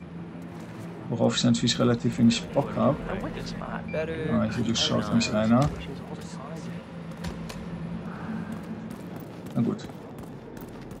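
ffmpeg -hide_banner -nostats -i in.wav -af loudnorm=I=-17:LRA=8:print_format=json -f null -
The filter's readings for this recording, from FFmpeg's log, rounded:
"input_i" : "-28.1",
"input_tp" : "-9.6",
"input_lra" : "9.4",
"input_thresh" : "-39.1",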